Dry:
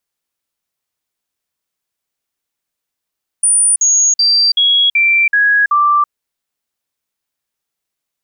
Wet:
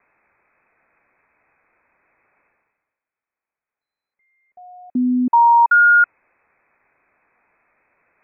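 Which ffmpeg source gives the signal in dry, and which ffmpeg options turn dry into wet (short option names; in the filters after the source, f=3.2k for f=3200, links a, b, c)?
-f lavfi -i "aevalsrc='0.398*clip(min(mod(t,0.38),0.33-mod(t,0.38))/0.005,0,1)*sin(2*PI*9400*pow(2,-floor(t/0.38)/2)*mod(t,0.38))':d=2.66:s=44100"
-af "areverse,acompressor=mode=upward:threshold=-34dB:ratio=2.5,areverse,lowpass=f=2.2k:t=q:w=0.5098,lowpass=f=2.2k:t=q:w=0.6013,lowpass=f=2.2k:t=q:w=0.9,lowpass=f=2.2k:t=q:w=2.563,afreqshift=-2600"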